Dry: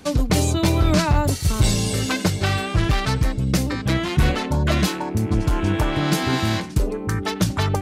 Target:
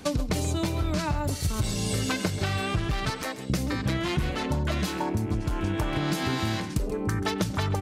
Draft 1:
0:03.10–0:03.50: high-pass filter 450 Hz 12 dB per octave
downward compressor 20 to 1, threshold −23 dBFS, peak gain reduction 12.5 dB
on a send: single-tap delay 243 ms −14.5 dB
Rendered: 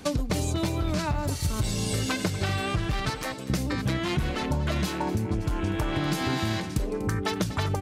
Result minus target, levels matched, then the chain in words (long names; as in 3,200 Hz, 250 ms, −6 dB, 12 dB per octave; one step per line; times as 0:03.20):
echo 110 ms late
0:03.10–0:03.50: high-pass filter 450 Hz 12 dB per octave
downward compressor 20 to 1, threshold −23 dBFS, peak gain reduction 12.5 dB
on a send: single-tap delay 133 ms −14.5 dB